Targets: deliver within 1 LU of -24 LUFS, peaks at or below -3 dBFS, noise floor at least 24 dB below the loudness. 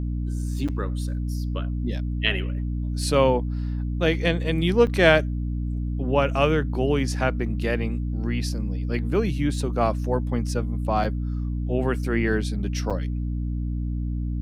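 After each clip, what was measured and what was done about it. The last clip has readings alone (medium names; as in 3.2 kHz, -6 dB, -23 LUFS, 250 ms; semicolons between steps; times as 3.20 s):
dropouts 4; longest dropout 6.0 ms; hum 60 Hz; highest harmonic 300 Hz; hum level -24 dBFS; loudness -25.0 LUFS; peak level -1.0 dBFS; loudness target -24.0 LUFS
-> interpolate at 0.68/4.87/11.04/12.90 s, 6 ms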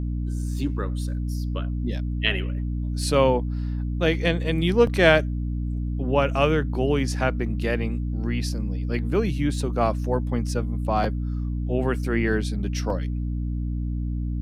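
dropouts 0; hum 60 Hz; highest harmonic 300 Hz; hum level -24 dBFS
-> hum notches 60/120/180/240/300 Hz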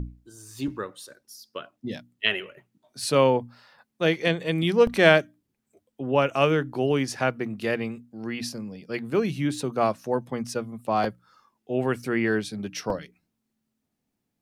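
hum not found; loudness -25.5 LUFS; peak level -1.5 dBFS; loudness target -24.0 LUFS
-> trim +1.5 dB; peak limiter -3 dBFS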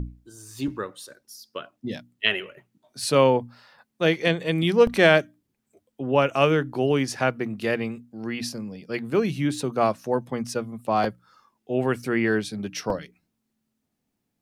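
loudness -24.0 LUFS; peak level -3.0 dBFS; noise floor -78 dBFS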